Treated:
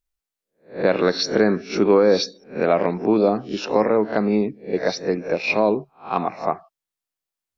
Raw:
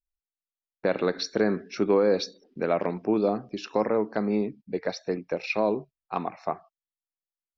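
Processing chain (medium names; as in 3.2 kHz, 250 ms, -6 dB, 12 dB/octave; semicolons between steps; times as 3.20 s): reverse spectral sustain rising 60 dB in 0.31 s; trim +6 dB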